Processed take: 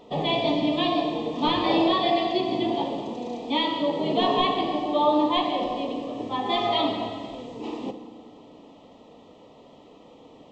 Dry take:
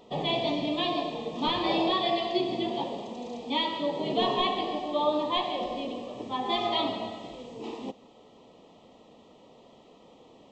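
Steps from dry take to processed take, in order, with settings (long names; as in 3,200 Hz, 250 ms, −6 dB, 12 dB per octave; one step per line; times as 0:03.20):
high-shelf EQ 4,100 Hz −5 dB
feedback delay network reverb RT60 1.7 s, low-frequency decay 1.5×, high-frequency decay 0.75×, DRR 8.5 dB
level +4 dB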